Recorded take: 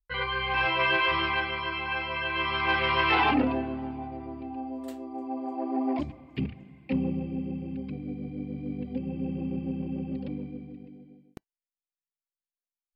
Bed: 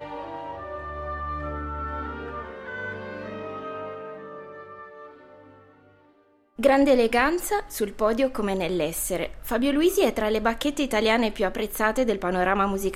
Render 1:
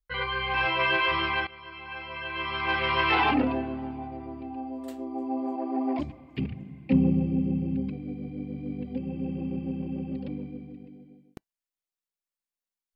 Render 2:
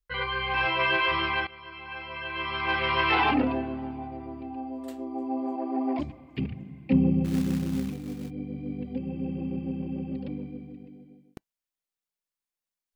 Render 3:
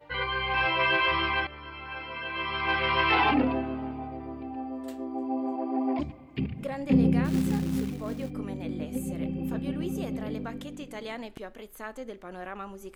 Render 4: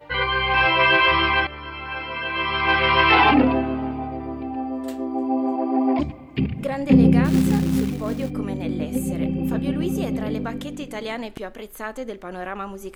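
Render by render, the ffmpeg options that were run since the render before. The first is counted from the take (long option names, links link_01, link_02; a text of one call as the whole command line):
ffmpeg -i in.wav -filter_complex "[0:a]asettb=1/sr,asplit=3[link_01][link_02][link_03];[link_01]atrim=end=4.974[link_04];[link_02]atrim=start=4.97:end=5.56,asetpts=PTS-STARTPTS,afade=type=in:duration=0.004:curve=qsin,afade=type=out:start_time=0.586:duration=0.004:curve=qsin,asplit=2[link_05][link_06];[link_06]adelay=15,volume=-3.5dB[link_07];[link_05][link_07]amix=inputs=2:normalize=0,atrim=end_sample=26019[link_08];[link_03]atrim=start=5.556[link_09];[link_04][link_08]acrossfade=duration=0.004:curve1=hsin:curve2=qsin[link_10];[link_10][link_09]acrossfade=duration=0.004:curve1=qsin:curve2=hsin,asettb=1/sr,asplit=3[link_11][link_12][link_13];[link_11]atrim=end=6.504[link_14];[link_12]atrim=start=6.5:end=7.9,asetpts=PTS-STARTPTS,afade=type=in:duration=0.004:curve=qsin,afade=type=out:start_time=1.396:duration=0.004:curve=qsin,equalizer=frequency=130:width=0.43:gain=8.5[link_15];[link_13]atrim=start=7.896[link_16];[link_14][link_15]acrossfade=duration=0.004:curve1=hsin:curve2=qsin[link_17];[link_17][link_16]acrossfade=duration=0.004:curve1=qsin:curve2=hsin,asplit=2[link_18][link_19];[link_18]atrim=end=1.47,asetpts=PTS-STARTPTS,afade=type=out:start_time=1.466:duration=0.004:curve=hsin:silence=0.141254[link_20];[link_19]atrim=start=1.47,asetpts=PTS-STARTPTS,afade=type=in:duration=1.53:silence=0.141254[link_21];[link_20][link_21]concat=n=2:v=0:a=1" out.wav
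ffmpeg -i in.wav -filter_complex "[0:a]asplit=3[link_01][link_02][link_03];[link_01]afade=type=out:start_time=7.24:duration=0.02[link_04];[link_02]acrusher=bits=4:mode=log:mix=0:aa=0.000001,afade=type=in:start_time=7.24:duration=0.02,afade=type=out:start_time=8.29:duration=0.02[link_05];[link_03]afade=type=in:start_time=8.29:duration=0.02[link_06];[link_04][link_05][link_06]amix=inputs=3:normalize=0" out.wav
ffmpeg -i in.wav -i bed.wav -filter_complex "[1:a]volume=-16.5dB[link_01];[0:a][link_01]amix=inputs=2:normalize=0" out.wav
ffmpeg -i in.wav -af "volume=8dB,alimiter=limit=-3dB:level=0:latency=1" out.wav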